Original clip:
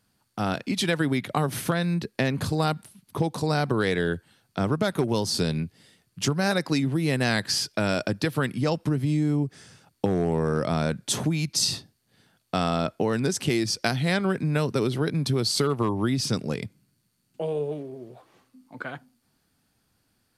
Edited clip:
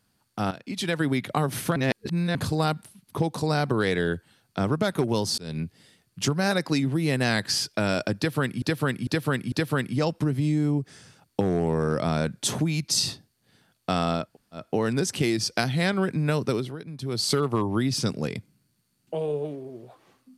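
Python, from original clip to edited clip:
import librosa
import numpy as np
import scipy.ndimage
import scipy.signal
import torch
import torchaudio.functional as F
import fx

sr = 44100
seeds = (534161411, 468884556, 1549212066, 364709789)

y = fx.edit(x, sr, fx.fade_in_from(start_s=0.51, length_s=0.56, floor_db=-13.5),
    fx.reverse_span(start_s=1.76, length_s=0.59),
    fx.fade_in_span(start_s=5.38, length_s=0.27),
    fx.repeat(start_s=8.17, length_s=0.45, count=4),
    fx.insert_room_tone(at_s=12.9, length_s=0.38, crossfade_s=0.24),
    fx.fade_down_up(start_s=14.76, length_s=0.77, db=-12.5, fade_s=0.27), tone=tone)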